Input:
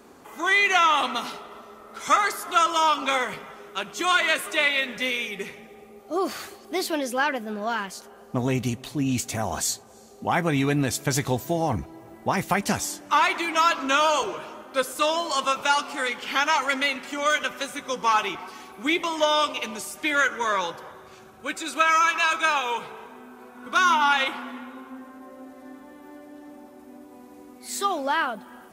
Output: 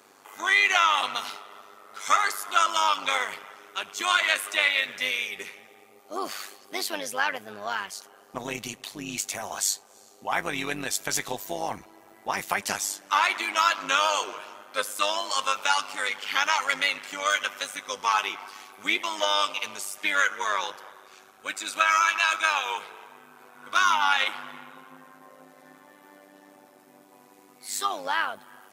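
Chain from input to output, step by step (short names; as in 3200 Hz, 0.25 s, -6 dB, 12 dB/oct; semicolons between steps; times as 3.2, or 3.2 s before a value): HPF 1200 Hz 6 dB/oct; AM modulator 100 Hz, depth 60%; gain +4 dB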